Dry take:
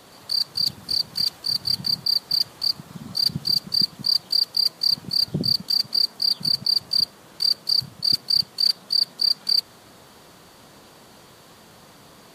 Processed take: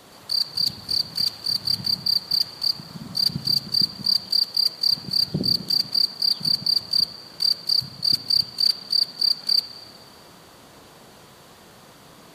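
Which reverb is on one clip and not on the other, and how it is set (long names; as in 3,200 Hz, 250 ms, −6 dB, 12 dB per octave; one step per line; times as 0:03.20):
spring reverb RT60 1.7 s, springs 37/55 ms, chirp 25 ms, DRR 7 dB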